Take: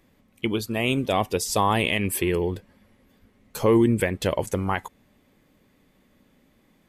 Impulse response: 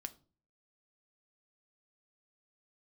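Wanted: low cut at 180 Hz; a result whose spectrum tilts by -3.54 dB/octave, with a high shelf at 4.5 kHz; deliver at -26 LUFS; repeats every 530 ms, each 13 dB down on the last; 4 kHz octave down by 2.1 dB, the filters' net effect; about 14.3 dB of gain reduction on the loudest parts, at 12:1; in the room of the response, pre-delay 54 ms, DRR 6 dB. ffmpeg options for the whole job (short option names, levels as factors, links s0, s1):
-filter_complex "[0:a]highpass=180,equalizer=f=4000:t=o:g=-6.5,highshelf=f=4500:g=6.5,acompressor=threshold=0.0355:ratio=12,aecho=1:1:530|1060|1590:0.224|0.0493|0.0108,asplit=2[s0][s1];[1:a]atrim=start_sample=2205,adelay=54[s2];[s1][s2]afir=irnorm=-1:irlink=0,volume=0.75[s3];[s0][s3]amix=inputs=2:normalize=0,volume=2.37"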